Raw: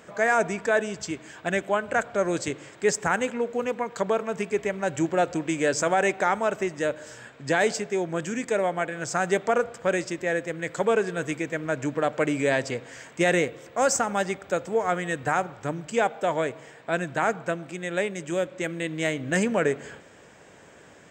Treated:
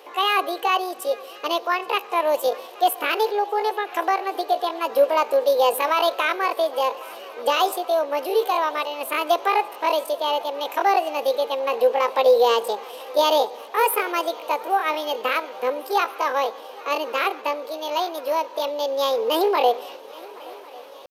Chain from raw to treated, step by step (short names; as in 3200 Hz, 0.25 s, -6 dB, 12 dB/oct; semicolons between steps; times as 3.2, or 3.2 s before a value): pitch shift +9.5 st; resonant high-pass 470 Hz, resonance Q 4.9; swung echo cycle 1.099 s, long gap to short 3:1, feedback 71%, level -23 dB